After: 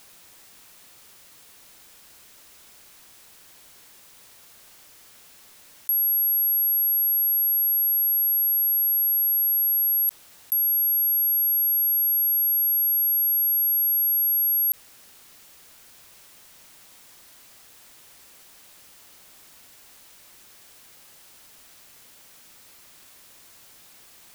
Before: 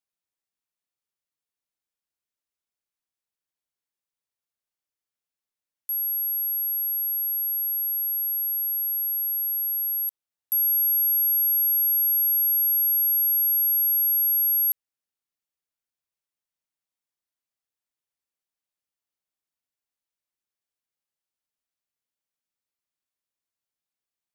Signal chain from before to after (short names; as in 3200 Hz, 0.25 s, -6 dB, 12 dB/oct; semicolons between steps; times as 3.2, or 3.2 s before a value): fast leveller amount 100%